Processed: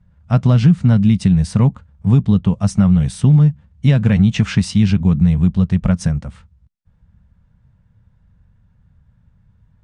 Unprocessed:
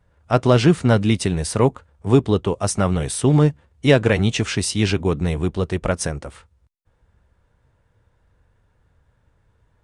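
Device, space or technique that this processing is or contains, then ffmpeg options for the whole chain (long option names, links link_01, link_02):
jukebox: -filter_complex "[0:a]asettb=1/sr,asplit=3[link_01][link_02][link_03];[link_01]atrim=end=4.344[link_04];[link_02]atrim=start=4.34:end=4.78,asetpts=PTS-STARTPTS,afade=type=in:duration=0.004:curve=qsin,afade=type=out:start_time=0.436:duration=0.004:curve=qsin,equalizer=frequency=1200:width_type=o:width=2.5:gain=6[link_05];[link_03]atrim=start=4.776[link_06];[link_04][link_05]acrossfade=duration=0.004:curve1=hsin:curve2=qsin[link_07];[link_07][link_06]acrossfade=duration=0.004:curve1=qsin:curve2=hsin,lowpass=7200,lowshelf=frequency=260:width_type=q:width=3:gain=10,acompressor=threshold=-5dB:ratio=5,volume=-3dB"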